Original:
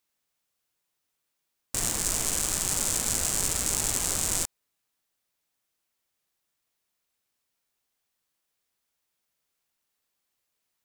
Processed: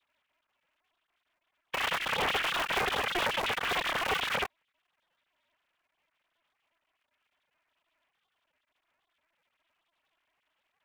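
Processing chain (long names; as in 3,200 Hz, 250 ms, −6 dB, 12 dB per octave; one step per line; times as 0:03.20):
three sine waves on the formant tracks
ring modulator with a square carrier 170 Hz
level −3 dB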